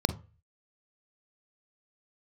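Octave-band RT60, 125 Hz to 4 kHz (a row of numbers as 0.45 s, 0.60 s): 0.50 s, 0.30 s, 0.35 s, 0.35 s, 0.35 s, 0.25 s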